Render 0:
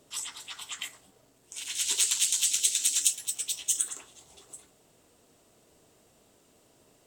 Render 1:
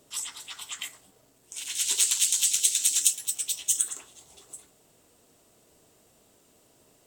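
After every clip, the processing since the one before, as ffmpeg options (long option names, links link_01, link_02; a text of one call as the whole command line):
ffmpeg -i in.wav -af "highshelf=frequency=8900:gain=6" out.wav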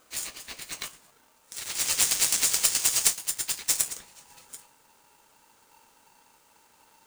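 ffmpeg -i in.wav -af "asubboost=boost=10:cutoff=56,aeval=exprs='val(0)*sgn(sin(2*PI*900*n/s))':channel_layout=same" out.wav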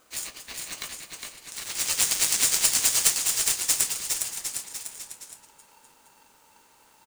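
ffmpeg -i in.wav -af "aecho=1:1:410|758.5|1055|1307|1521:0.631|0.398|0.251|0.158|0.1" out.wav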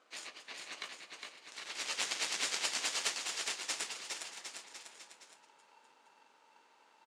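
ffmpeg -i in.wav -af "highpass=330,lowpass=4000,volume=-5dB" out.wav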